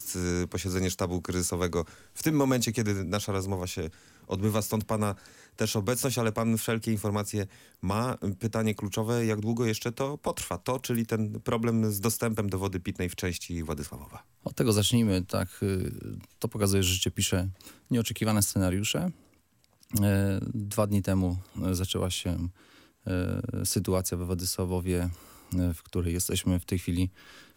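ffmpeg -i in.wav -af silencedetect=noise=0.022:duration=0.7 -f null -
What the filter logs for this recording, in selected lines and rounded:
silence_start: 19.10
silence_end: 19.93 | silence_duration: 0.83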